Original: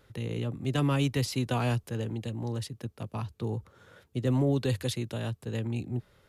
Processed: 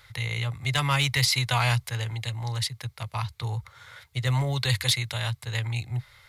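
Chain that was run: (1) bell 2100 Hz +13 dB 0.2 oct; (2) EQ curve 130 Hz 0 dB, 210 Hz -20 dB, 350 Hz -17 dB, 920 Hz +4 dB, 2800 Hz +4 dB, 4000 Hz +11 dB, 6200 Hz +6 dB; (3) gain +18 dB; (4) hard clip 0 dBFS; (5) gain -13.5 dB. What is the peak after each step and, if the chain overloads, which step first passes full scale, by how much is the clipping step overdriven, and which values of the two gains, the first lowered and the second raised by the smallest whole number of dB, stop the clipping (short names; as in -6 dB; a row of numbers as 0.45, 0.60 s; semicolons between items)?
-17.0, -11.5, +6.5, 0.0, -13.5 dBFS; step 3, 6.5 dB; step 3 +11 dB, step 5 -6.5 dB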